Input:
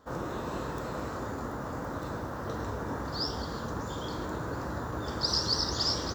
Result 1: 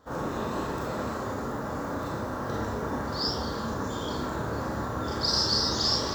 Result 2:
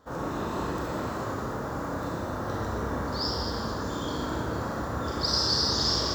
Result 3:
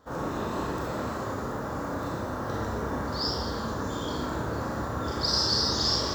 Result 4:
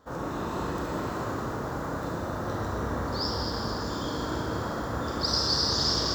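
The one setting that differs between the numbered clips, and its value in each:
four-comb reverb, RT60: 0.31, 1.6, 0.72, 3.8 seconds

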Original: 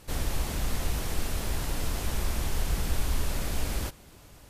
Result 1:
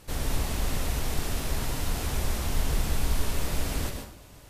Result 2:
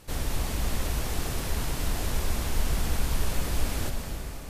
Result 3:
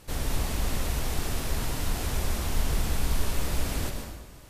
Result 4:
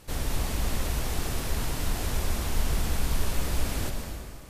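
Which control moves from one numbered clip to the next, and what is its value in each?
dense smooth reverb, RT60: 0.52, 5.2, 1.1, 2.3 seconds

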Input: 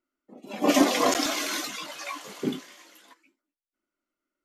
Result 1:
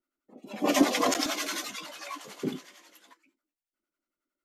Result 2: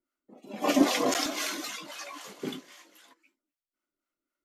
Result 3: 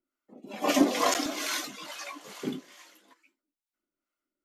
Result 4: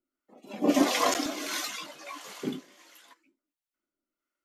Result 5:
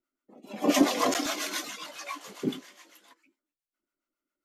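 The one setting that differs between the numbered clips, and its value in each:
two-band tremolo in antiphase, speed: 11, 3.8, 2.3, 1.5, 7.3 Hertz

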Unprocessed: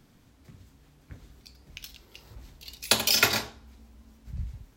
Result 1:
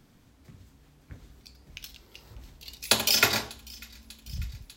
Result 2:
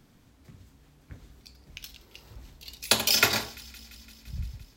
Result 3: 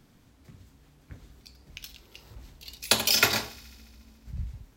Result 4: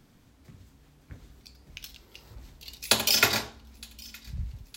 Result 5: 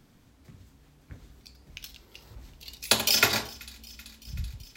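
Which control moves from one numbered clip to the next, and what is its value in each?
delay with a high-pass on its return, delay time: 595, 171, 71, 915, 382 milliseconds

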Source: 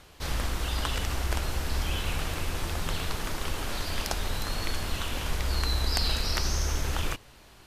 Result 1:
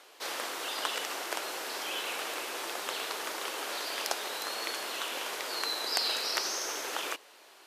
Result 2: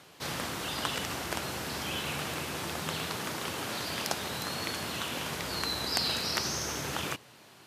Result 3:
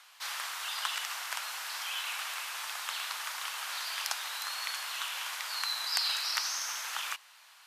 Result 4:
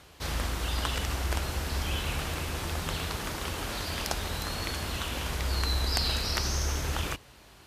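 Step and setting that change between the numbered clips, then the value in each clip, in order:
high-pass filter, corner frequency: 370, 120, 950, 42 Hertz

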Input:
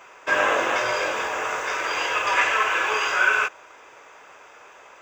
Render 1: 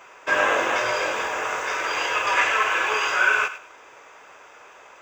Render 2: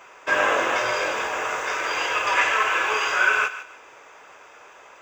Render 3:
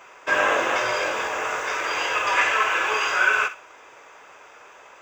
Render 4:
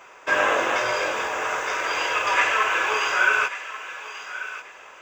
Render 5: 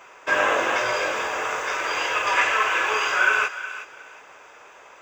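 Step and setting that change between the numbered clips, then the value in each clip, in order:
feedback echo with a high-pass in the loop, delay time: 101, 151, 62, 1,138, 365 milliseconds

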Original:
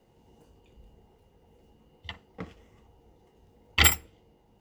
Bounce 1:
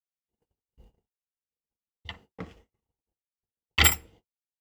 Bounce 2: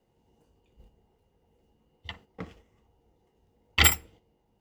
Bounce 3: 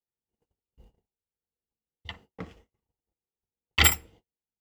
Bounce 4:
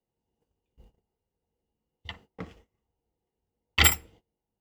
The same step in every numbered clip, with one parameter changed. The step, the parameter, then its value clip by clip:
noise gate, range: −56, −8, −40, −24 decibels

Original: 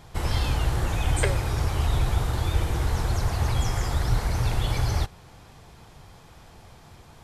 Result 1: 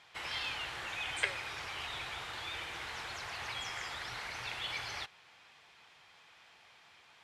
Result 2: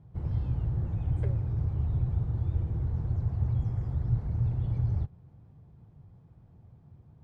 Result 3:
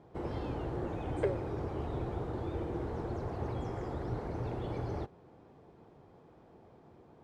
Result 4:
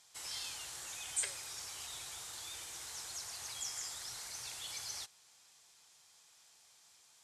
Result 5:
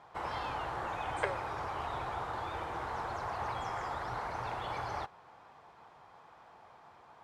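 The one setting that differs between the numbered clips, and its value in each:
resonant band-pass, frequency: 2,500, 120, 360, 7,400, 980 Hertz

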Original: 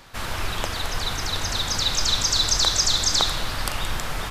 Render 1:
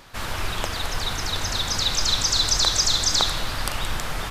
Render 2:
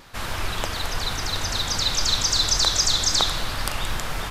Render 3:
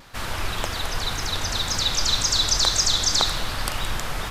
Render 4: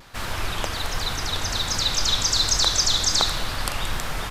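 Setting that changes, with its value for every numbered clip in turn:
pitch vibrato, speed: 11, 3.9, 1.9, 1.3 Hertz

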